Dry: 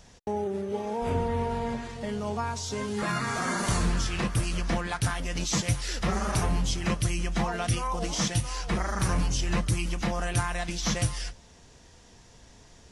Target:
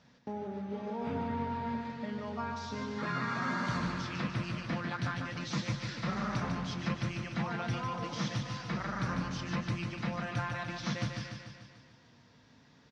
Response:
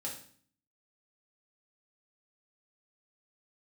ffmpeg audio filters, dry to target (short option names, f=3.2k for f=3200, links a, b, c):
-af "highpass=140,equalizer=f=140:t=q:w=4:g=7,equalizer=f=250:t=q:w=4:g=6,equalizer=f=390:t=q:w=4:g=-7,equalizer=f=740:t=q:w=4:g=-5,equalizer=f=1.4k:t=q:w=4:g=3,equalizer=f=3k:t=q:w=4:g=-4,lowpass=f=4.6k:w=0.5412,lowpass=f=4.6k:w=1.3066,aecho=1:1:147|294|441|588|735|882|1029|1176:0.531|0.313|0.185|0.109|0.0643|0.038|0.0224|0.0132,volume=-6.5dB"